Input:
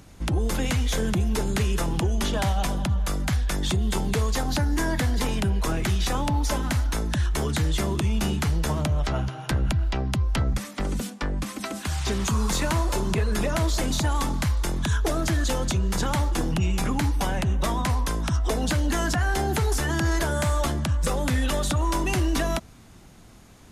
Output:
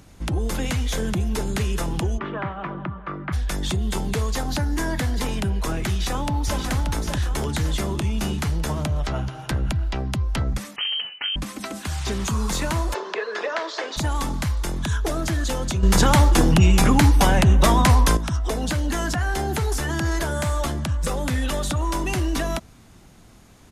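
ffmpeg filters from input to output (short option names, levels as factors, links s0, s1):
-filter_complex "[0:a]asplit=3[s0][s1][s2];[s0]afade=t=out:st=2.17:d=0.02[s3];[s1]highpass=160,equalizer=f=160:t=q:w=4:g=5,equalizer=f=230:t=q:w=4:g=-9,equalizer=f=340:t=q:w=4:g=6,equalizer=f=510:t=q:w=4:g=-4,equalizer=f=750:t=q:w=4:g=-6,equalizer=f=1200:t=q:w=4:g=7,lowpass=f=2200:w=0.5412,lowpass=f=2200:w=1.3066,afade=t=in:st=2.17:d=0.02,afade=t=out:st=3.32:d=0.02[s4];[s2]afade=t=in:st=3.32:d=0.02[s5];[s3][s4][s5]amix=inputs=3:normalize=0,asplit=2[s6][s7];[s7]afade=t=in:st=5.89:d=0.01,afade=t=out:st=6.6:d=0.01,aecho=0:1:580|1160|1740|2320|2900|3480:0.562341|0.281171|0.140585|0.0702927|0.0351463|0.0175732[s8];[s6][s8]amix=inputs=2:normalize=0,asettb=1/sr,asplit=3[s9][s10][s11];[s9]atrim=end=10.764[s12];[s10]atrim=start=10.76:end=11.36,asetpts=PTS-STARTPTS,afade=t=in:d=0.004:c=qsin,afade=t=out:st=0.596:d=0.004:c=qsin,lowpass=f=2700:t=q:w=0.5098,lowpass=f=2700:t=q:w=0.6013,lowpass=f=2700:t=q:w=0.9,lowpass=f=2700:t=q:w=2.563,afreqshift=-3200[s13];[s11]atrim=start=11.356[s14];[s12][s13]acrossfade=d=0.004:c1=hsin:c2=qsin[s15];[s15][s14]acrossfade=d=0.004:c1=qsin:c2=hsin,asplit=3[s16][s17][s18];[s16]afade=t=out:st=12.93:d=0.02[s19];[s17]highpass=f=410:w=0.5412,highpass=f=410:w=1.3066,equalizer=f=450:t=q:w=4:g=6,equalizer=f=1100:t=q:w=4:g=4,equalizer=f=1700:t=q:w=4:g=7,lowpass=f=5200:w=0.5412,lowpass=f=5200:w=1.3066,afade=t=in:st=12.93:d=0.02,afade=t=out:st=13.96:d=0.02[s20];[s18]afade=t=in:st=13.96:d=0.02[s21];[s19][s20][s21]amix=inputs=3:normalize=0,asplit=3[s22][s23][s24];[s22]atrim=end=15.832[s25];[s23]atrim=start=15.828:end=18.172,asetpts=PTS-STARTPTS,volume=2.82[s26];[s24]atrim=start=18.168[s27];[s25][s26]acrossfade=d=0.004:c1=hsin:c2=hsin[s28];[s28][s27]acrossfade=d=0.004:c1=hsin:c2=hsin"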